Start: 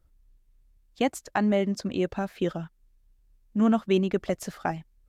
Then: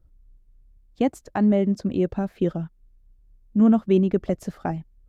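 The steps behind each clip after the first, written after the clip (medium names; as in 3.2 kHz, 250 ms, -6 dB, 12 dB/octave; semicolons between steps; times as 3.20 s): tilt shelf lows +7 dB, about 710 Hz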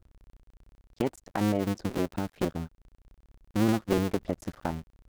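cycle switcher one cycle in 2, muted; in parallel at +3 dB: compression, threshold -30 dBFS, peak gain reduction 15 dB; on the sum: trim -7.5 dB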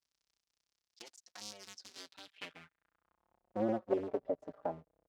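band-pass sweep 5.3 kHz -> 580 Hz, 1.93–3.61 s; endless flanger 4.7 ms +0.47 Hz; trim +3.5 dB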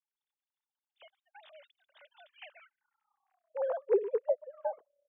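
formants replaced by sine waves; trim +4 dB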